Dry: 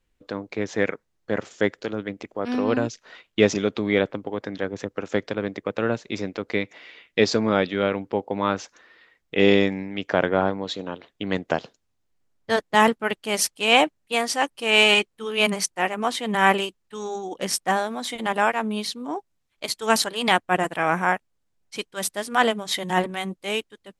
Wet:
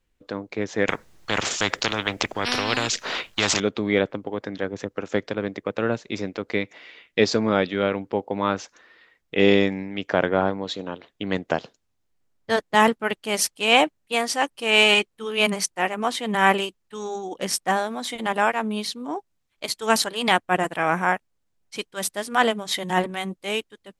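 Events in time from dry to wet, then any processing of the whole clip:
0.88–3.6 spectral compressor 4:1

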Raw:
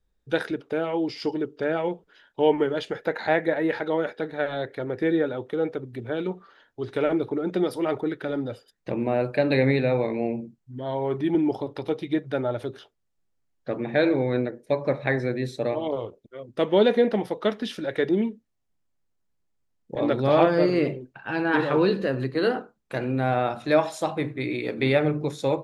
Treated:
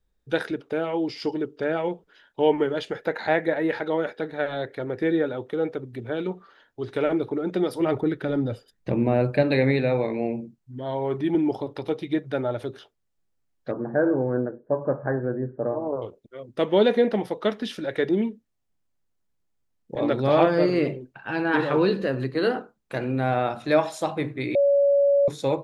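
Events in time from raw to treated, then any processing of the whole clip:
7.8–9.43 low shelf 220 Hz +10.5 dB
13.71–16.02 Chebyshev low-pass 1600 Hz, order 6
24.55–25.28 bleep 564 Hz -15.5 dBFS

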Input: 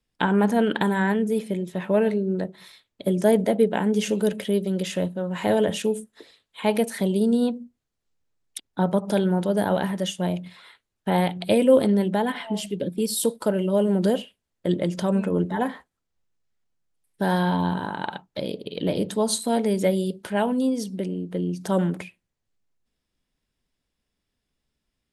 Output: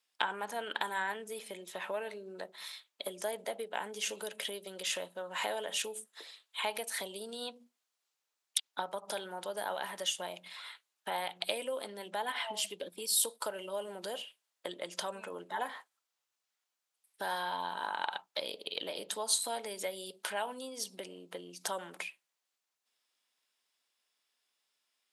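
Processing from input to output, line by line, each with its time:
7.28–8.82 dynamic EQ 3500 Hz, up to +6 dB, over -50 dBFS, Q 0.82
whole clip: compressor 4:1, threshold -29 dBFS; HPF 950 Hz 12 dB/oct; bell 1800 Hz -3.5 dB 0.8 oct; gain +4 dB

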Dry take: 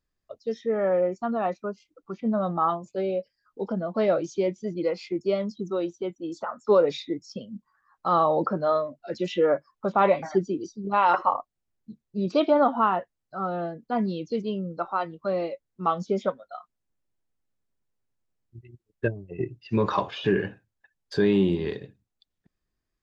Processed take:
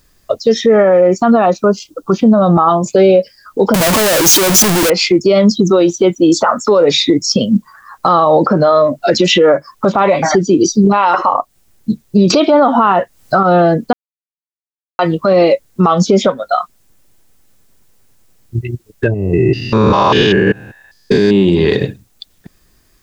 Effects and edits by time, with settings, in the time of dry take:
1.46–2.77 bell 2100 Hz -13.5 dB 0.47 oct
3.74–4.9 infinite clipping
12.3–13.43 gain +8 dB
13.93–14.99 mute
19.14–21.45 stepped spectrum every 0.2 s
whole clip: high shelf 5300 Hz +9 dB; compressor 6:1, threshold -29 dBFS; maximiser +28.5 dB; gain -1 dB

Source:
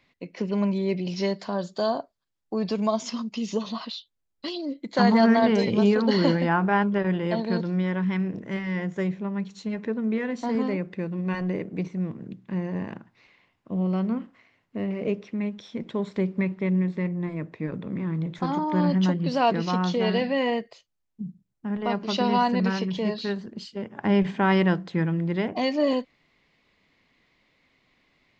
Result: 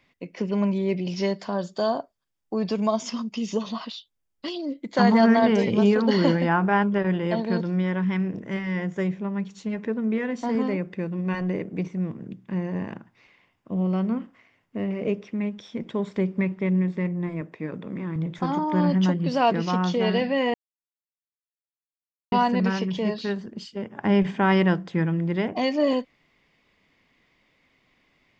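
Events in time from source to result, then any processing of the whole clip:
17.41–18.16 HPF 210 Hz 6 dB/oct
20.54–22.32 mute
whole clip: notch 4100 Hz, Q 8.7; gain +1 dB

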